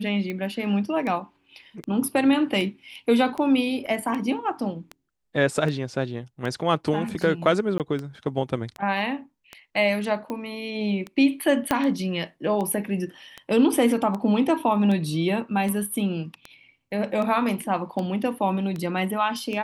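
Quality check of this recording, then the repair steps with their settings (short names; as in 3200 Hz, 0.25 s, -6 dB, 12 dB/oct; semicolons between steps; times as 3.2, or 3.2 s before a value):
tick 78 rpm -19 dBFS
3.86–3.87 gap 6.5 ms
7.78–7.8 gap 18 ms
11.71 pop -7 dBFS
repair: de-click; interpolate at 3.86, 6.5 ms; interpolate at 7.78, 18 ms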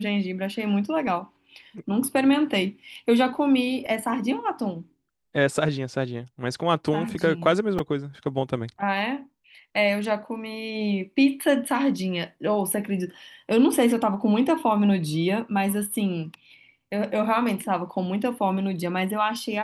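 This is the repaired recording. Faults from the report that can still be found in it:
11.71 pop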